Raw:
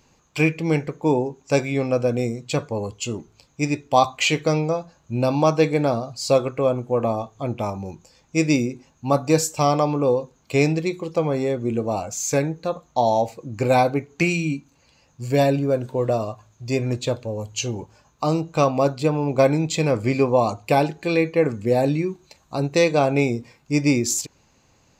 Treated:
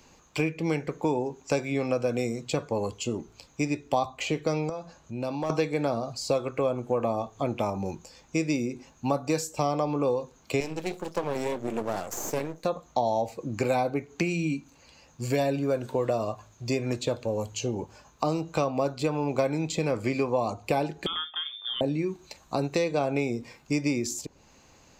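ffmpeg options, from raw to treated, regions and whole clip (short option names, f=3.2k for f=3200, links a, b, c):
-filter_complex "[0:a]asettb=1/sr,asplit=3[a][b][c];[a]atrim=end=4.694[d];[b]atrim=start=4.69:end=5.5,asetpts=PTS-STARTPTS,afade=t=in:d=0.004:c=qsin,afade=t=out:st=0.806:d=0.004:c=qsin,lowpass=12k,acompressor=threshold=-41dB:ratio=2:attack=3.2:release=140:knee=1:detection=peak,aeval=exprs='clip(val(0),-1,0.0531)':c=same[e];[c]atrim=start=5.496[f];[d][e]acrossfade=d=0.004:c1=hsin:c2=qsin[g];[g][f]acrossfade=d=0.004:c1=qsin:c2=hsin,asettb=1/sr,asplit=3[h][i][j];[h]atrim=end=10.604[k];[i]atrim=start=10.6:end=12.65,asetpts=PTS-STARTPTS,afade=t=in:d=0.004:c=qsin,afade=t=out:st=2.046:d=0.004:c=qsin,highshelf=f=6.7k:g=12,flanger=delay=0.9:depth=6.7:regen=-71:speed=1.9:shape=triangular,aeval=exprs='max(val(0),0)':c=same[l];[j]atrim=start=12.646[m];[k][l]acrossfade=d=0.004:c1=hsin:c2=qsin[n];[n][m]acrossfade=d=0.004:c1=qsin:c2=hsin,asettb=1/sr,asplit=3[o][p][q];[o]atrim=end=21.064[r];[p]atrim=start=21.06:end=21.81,asetpts=PTS-STARTPTS,afade=t=in:d=0.004:c=qsin,afade=t=out:st=0.746:d=0.004:c=qsin,asplit=2[s][t];[t]adelay=27,volume=-13.5dB[u];[s][u]amix=inputs=2:normalize=0,atrim=end_sample=33075,lowpass=f=3.1k:t=q:w=0.5098,lowpass=f=3.1k:t=q:w=0.6013,lowpass=f=3.1k:t=q:w=0.9,lowpass=f=3.1k:t=q:w=2.563,afreqshift=-3700[v];[q]atrim=start=21.806[w];[r][v]acrossfade=d=0.004:c1=hsin:c2=qsin[x];[x][w]acrossfade=d=0.004:c1=qsin:c2=hsin,equalizer=f=120:w=1.3:g=-5.5,acrossover=split=98|840[y][z][aa];[y]acompressor=threshold=-49dB:ratio=4[ab];[z]acompressor=threshold=-30dB:ratio=4[ac];[aa]acompressor=threshold=-39dB:ratio=4[ad];[ab][ac][ad]amix=inputs=3:normalize=0,volume=3.5dB"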